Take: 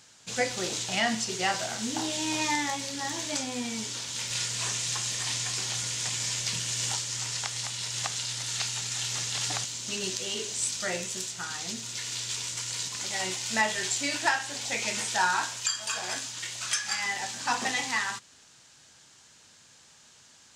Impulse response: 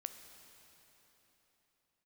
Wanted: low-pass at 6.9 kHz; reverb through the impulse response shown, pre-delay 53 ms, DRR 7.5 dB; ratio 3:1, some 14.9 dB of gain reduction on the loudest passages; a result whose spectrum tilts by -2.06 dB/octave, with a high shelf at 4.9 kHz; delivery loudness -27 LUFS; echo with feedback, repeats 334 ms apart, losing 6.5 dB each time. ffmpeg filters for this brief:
-filter_complex "[0:a]lowpass=6900,highshelf=f=4900:g=-5.5,acompressor=threshold=0.00794:ratio=3,aecho=1:1:334|668|1002|1336|1670|2004:0.473|0.222|0.105|0.0491|0.0231|0.0109,asplit=2[s0][s1];[1:a]atrim=start_sample=2205,adelay=53[s2];[s1][s2]afir=irnorm=-1:irlink=0,volume=0.596[s3];[s0][s3]amix=inputs=2:normalize=0,volume=3.98"

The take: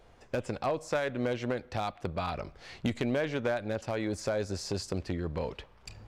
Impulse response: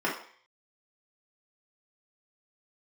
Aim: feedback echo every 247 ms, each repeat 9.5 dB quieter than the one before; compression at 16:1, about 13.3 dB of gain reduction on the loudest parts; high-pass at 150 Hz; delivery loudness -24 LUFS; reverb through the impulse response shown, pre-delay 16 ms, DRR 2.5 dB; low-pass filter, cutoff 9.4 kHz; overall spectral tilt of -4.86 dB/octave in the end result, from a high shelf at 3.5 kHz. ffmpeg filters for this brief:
-filter_complex "[0:a]highpass=150,lowpass=9400,highshelf=f=3500:g=-8.5,acompressor=threshold=0.0112:ratio=16,aecho=1:1:247|494|741|988:0.335|0.111|0.0365|0.012,asplit=2[s0][s1];[1:a]atrim=start_sample=2205,adelay=16[s2];[s1][s2]afir=irnorm=-1:irlink=0,volume=0.2[s3];[s0][s3]amix=inputs=2:normalize=0,volume=8.91"

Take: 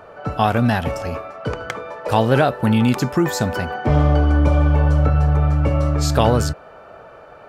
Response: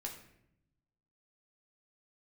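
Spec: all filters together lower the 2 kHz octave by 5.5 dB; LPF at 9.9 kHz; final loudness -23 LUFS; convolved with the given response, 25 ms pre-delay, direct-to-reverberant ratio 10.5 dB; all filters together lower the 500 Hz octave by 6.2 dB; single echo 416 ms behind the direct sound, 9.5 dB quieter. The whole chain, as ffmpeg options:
-filter_complex "[0:a]lowpass=9900,equalizer=f=500:t=o:g=-7.5,equalizer=f=2000:t=o:g=-7.5,aecho=1:1:416:0.335,asplit=2[s0][s1];[1:a]atrim=start_sample=2205,adelay=25[s2];[s1][s2]afir=irnorm=-1:irlink=0,volume=0.376[s3];[s0][s3]amix=inputs=2:normalize=0,volume=0.668"

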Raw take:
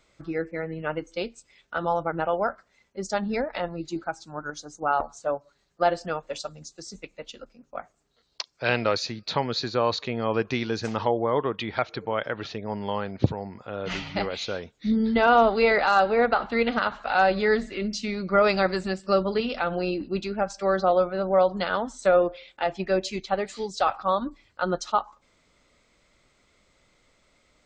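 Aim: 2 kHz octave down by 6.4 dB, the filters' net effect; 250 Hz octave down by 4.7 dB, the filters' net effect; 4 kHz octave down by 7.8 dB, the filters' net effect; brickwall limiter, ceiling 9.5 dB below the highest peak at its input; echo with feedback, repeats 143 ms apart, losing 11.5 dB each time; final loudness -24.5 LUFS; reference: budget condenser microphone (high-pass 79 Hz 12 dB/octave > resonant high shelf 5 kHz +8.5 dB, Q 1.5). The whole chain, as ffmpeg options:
-af "equalizer=f=250:t=o:g=-6,equalizer=f=2000:t=o:g=-6,equalizer=f=4000:t=o:g=-9,alimiter=limit=0.126:level=0:latency=1,highpass=79,highshelf=f=5000:t=q:w=1.5:g=8.5,aecho=1:1:143|286|429:0.266|0.0718|0.0194,volume=2.11"

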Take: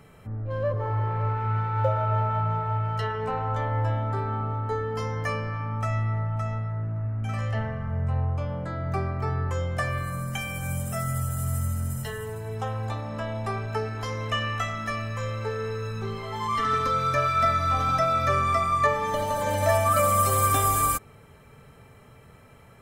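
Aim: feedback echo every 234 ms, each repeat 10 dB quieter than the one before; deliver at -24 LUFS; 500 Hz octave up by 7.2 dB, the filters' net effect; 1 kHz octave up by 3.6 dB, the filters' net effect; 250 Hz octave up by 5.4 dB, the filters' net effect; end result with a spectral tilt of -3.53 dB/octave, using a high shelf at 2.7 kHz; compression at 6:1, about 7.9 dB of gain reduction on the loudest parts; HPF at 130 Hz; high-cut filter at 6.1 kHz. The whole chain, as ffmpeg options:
-af "highpass=130,lowpass=6100,equalizer=f=250:t=o:g=6.5,equalizer=f=500:t=o:g=6.5,equalizer=f=1000:t=o:g=4,highshelf=f=2700:g=-4.5,acompressor=threshold=0.0891:ratio=6,aecho=1:1:234|468|702|936:0.316|0.101|0.0324|0.0104,volume=1.33"

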